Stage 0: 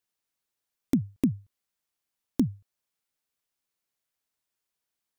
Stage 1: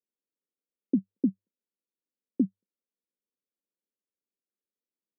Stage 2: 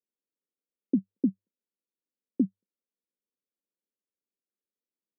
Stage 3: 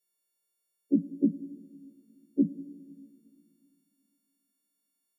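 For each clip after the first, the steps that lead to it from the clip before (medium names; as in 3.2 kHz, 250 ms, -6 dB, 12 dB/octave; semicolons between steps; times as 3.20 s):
local Wiener filter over 25 samples; Chebyshev band-pass 190–550 Hz, order 4
no audible change
partials quantised in pitch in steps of 4 st; on a send at -15.5 dB: reverberation RT60 2.4 s, pre-delay 6 ms; on the sum: trim +1.5 dB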